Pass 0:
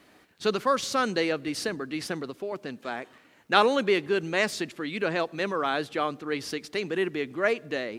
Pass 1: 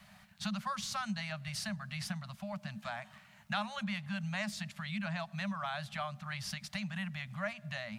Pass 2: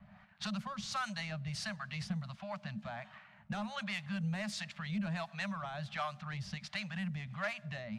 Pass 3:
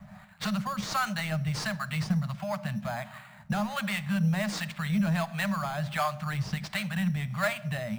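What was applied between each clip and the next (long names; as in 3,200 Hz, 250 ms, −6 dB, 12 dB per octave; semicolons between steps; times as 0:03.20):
Chebyshev band-stop filter 210–590 Hz, order 5; low shelf with overshoot 350 Hz +6.5 dB, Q 3; downward compressor 2.5 to 1, threshold −39 dBFS, peak gain reduction 14.5 dB
soft clipping −31.5 dBFS, distortion −16 dB; two-band tremolo in antiphase 1.4 Hz, depth 70%, crossover 580 Hz; low-pass that shuts in the quiet parts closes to 1,600 Hz, open at −37.5 dBFS; level +4.5 dB
in parallel at −4.5 dB: sample-rate reduction 5,700 Hz, jitter 0%; on the sum: rectangular room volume 1,900 cubic metres, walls furnished, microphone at 0.52 metres; level +5.5 dB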